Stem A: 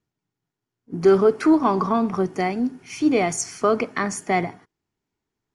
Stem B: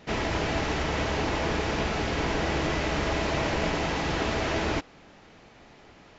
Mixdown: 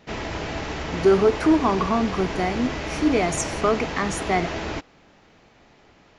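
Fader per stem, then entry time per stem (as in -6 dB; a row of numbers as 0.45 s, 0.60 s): -1.5 dB, -2.0 dB; 0.00 s, 0.00 s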